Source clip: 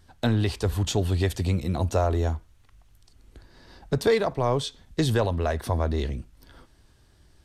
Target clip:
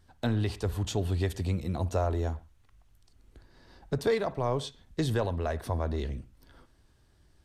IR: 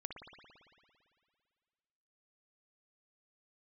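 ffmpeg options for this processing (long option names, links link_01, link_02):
-filter_complex "[0:a]asplit=2[link_01][link_02];[1:a]atrim=start_sample=2205,afade=type=out:start_time=0.2:duration=0.01,atrim=end_sample=9261,lowpass=2700[link_03];[link_02][link_03]afir=irnorm=-1:irlink=0,volume=-8dB[link_04];[link_01][link_04]amix=inputs=2:normalize=0,volume=-7dB"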